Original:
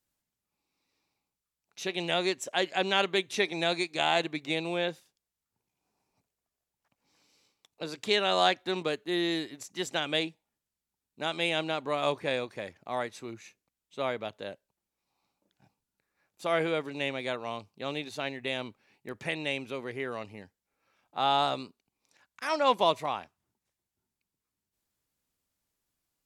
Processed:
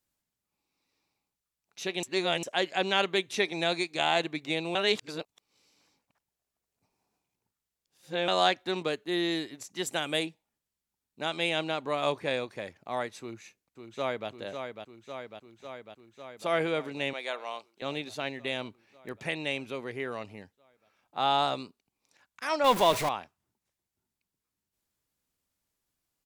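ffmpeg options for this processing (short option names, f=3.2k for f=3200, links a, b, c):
-filter_complex "[0:a]asettb=1/sr,asplit=3[a][b][c];[a]atrim=end=9.864[d];[b]atrim=start=9.86:end=10.26,asetpts=PTS-STARTPTS,afade=t=in:d=0.004:c=qsin,afade=t=out:st=0.396:d=0.004:c=qsin,highshelf=f=7.3k:t=q:w=1.5:g=9.5[e];[c]atrim=start=10.256[f];[d][e]acrossfade=d=0.004:c1=hsin:c2=qsin[g];[g][f]acrossfade=d=0.004:c1=qsin:c2=hsin,asplit=2[h][i];[i]afade=t=in:st=13.2:d=0.01,afade=t=out:st=14.29:d=0.01,aecho=0:1:550|1100|1650|2200|2750|3300|3850|4400|4950|5500|6050|6600:0.473151|0.354863|0.266148|0.199611|0.149708|0.112281|0.0842108|0.0631581|0.0473686|0.0355264|0.0266448|0.0199836[j];[h][j]amix=inputs=2:normalize=0,asettb=1/sr,asplit=3[k][l][m];[k]atrim=end=17.134[n];[l]atrim=start=17.13:end=17.82,asetpts=PTS-STARTPTS,afade=t=in:d=0.004:c=qsin,afade=t=out:st=0.686:d=0.004:c=qsin,highpass=530[o];[m]atrim=start=17.816[p];[n][o]acrossfade=d=0.004:c1=hsin:c2=qsin[q];[q][p]acrossfade=d=0.004:c1=qsin:c2=hsin,asettb=1/sr,asplit=3[r][s][t];[r]atrim=end=22.644[u];[s]atrim=start=22.64:end=23.09,asetpts=PTS-STARTPTS,afade=t=in:d=0.004:c=qsin,afade=t=out:st=0.446:d=0.004:c=qsin,aeval=exprs='val(0)+0.5*0.0398*sgn(val(0))':c=same[v];[t]atrim=start=23.086[w];[u][v]acrossfade=d=0.004:c1=hsin:c2=qsin[x];[x][w]acrossfade=d=0.004:c1=qsin:c2=hsin,asplit=5[y][z][aa][ab][ac];[y]atrim=end=2.032[ad];[z]atrim=start=2.028:end=2.432,asetpts=PTS-STARTPTS,areverse[ae];[aa]atrim=start=2.428:end=4.752[af];[ab]atrim=start=4.748:end=8.282,asetpts=PTS-STARTPTS,areverse[ag];[ac]atrim=start=8.278[ah];[ad][ae]acrossfade=d=0.004:c1=hsin:c2=hsin[ai];[ai][af]acrossfade=d=0.004:c1=hsin:c2=hsin[aj];[aj][ag]acrossfade=d=0.004:c1=hsin:c2=hsin[ak];[ak][ah]acrossfade=d=0.004:c1=hsin:c2=hsin"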